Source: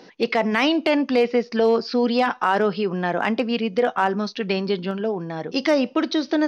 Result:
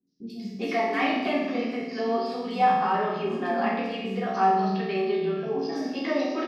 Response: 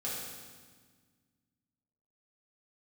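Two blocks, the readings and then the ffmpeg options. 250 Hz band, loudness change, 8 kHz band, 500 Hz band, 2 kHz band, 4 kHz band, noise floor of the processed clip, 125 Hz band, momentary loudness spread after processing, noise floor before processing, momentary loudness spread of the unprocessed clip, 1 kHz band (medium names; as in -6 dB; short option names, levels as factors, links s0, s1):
-6.5 dB, -4.5 dB, no reading, -6.5 dB, -6.0 dB, -9.0 dB, -40 dBFS, -4.0 dB, 8 LU, -47 dBFS, 6 LU, 0.0 dB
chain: -filter_complex "[0:a]agate=range=0.224:threshold=0.0126:ratio=16:detection=peak,acrossover=split=260|4700[s0][s1][s2];[s2]adelay=70[s3];[s1]adelay=390[s4];[s0][s4][s3]amix=inputs=3:normalize=0[s5];[1:a]atrim=start_sample=2205,asetrate=66150,aresample=44100[s6];[s5][s6]afir=irnorm=-1:irlink=0,volume=0.596"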